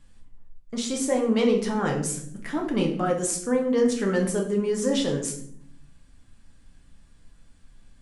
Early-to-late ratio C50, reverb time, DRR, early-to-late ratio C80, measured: 8.0 dB, 0.65 s, 0.0 dB, 12.0 dB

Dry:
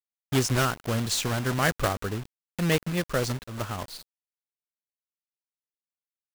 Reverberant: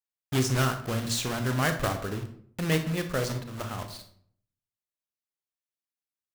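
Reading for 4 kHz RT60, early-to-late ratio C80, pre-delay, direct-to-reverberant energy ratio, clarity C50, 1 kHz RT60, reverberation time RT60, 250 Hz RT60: 0.40 s, 13.5 dB, 29 ms, 6.5 dB, 9.5 dB, 0.55 s, 0.60 s, 0.75 s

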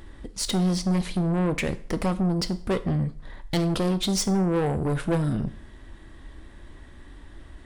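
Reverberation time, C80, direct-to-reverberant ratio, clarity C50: 0.45 s, 20.5 dB, 11.5 dB, 16.5 dB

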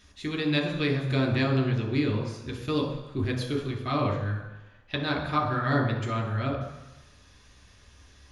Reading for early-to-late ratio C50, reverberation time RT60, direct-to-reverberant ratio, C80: 6.0 dB, 1.0 s, 0.5 dB, 8.5 dB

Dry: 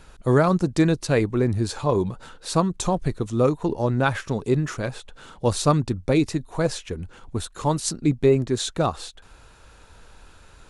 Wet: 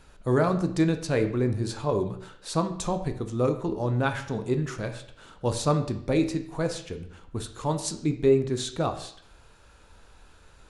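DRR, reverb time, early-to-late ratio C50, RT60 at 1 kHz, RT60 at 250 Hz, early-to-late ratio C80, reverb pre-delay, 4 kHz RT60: 7.0 dB, 0.60 s, 11.0 dB, 0.60 s, 0.65 s, 13.5 dB, 16 ms, 0.55 s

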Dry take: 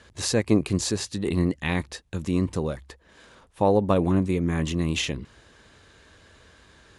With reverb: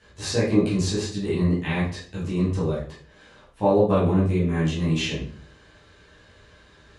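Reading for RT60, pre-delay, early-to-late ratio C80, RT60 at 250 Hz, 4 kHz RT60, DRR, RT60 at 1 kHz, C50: 0.50 s, 9 ms, 9.5 dB, 0.60 s, 0.40 s, -10.0 dB, 0.45 s, 4.0 dB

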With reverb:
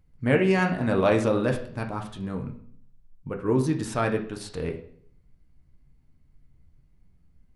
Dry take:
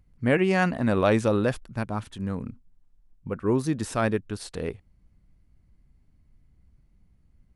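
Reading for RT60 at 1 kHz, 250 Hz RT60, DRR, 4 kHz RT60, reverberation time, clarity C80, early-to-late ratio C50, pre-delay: 0.55 s, 0.70 s, 3.0 dB, 0.55 s, 0.60 s, 14.0 dB, 10.5 dB, 6 ms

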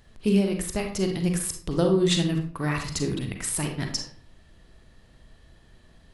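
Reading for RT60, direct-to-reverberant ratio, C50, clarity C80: 0.50 s, 3.5 dB, 6.5 dB, 11.5 dB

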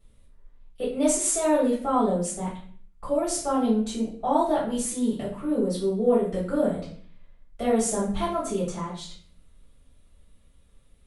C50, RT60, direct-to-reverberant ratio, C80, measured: 4.5 dB, 0.50 s, -8.5 dB, 9.0 dB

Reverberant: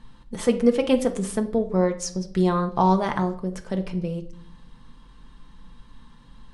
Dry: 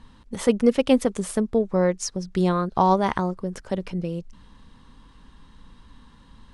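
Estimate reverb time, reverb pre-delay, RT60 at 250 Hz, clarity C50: 0.60 s, 5 ms, 0.75 s, 13.5 dB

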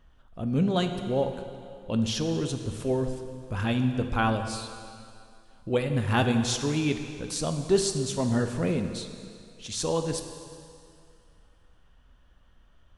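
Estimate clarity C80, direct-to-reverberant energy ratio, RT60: 8.0 dB, 6.0 dB, 2.4 s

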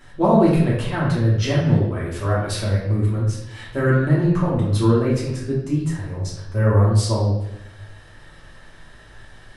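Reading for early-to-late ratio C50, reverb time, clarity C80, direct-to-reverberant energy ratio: 1.5 dB, 0.85 s, 5.0 dB, -7.5 dB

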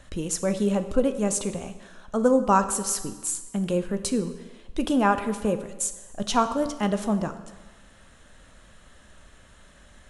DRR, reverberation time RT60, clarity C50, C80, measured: 9.0 dB, 1.3 s, 11.5 dB, 13.0 dB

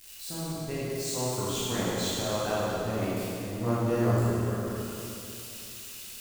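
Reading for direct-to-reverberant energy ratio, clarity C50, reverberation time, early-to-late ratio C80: -9.0 dB, -4.5 dB, 2.9 s, -2.5 dB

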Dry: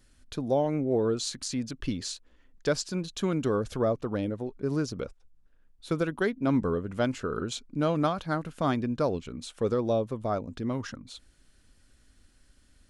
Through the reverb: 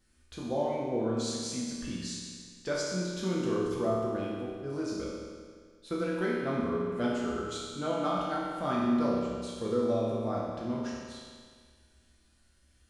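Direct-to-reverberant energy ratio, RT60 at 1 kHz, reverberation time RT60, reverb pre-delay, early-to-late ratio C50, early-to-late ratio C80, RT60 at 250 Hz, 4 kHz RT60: -6.5 dB, 1.8 s, 1.8 s, 6 ms, -1.0 dB, 1.0 dB, 1.8 s, 1.7 s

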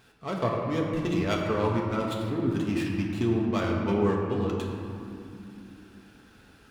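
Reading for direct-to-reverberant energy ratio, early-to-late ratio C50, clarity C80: -2.0 dB, 1.5 dB, 2.5 dB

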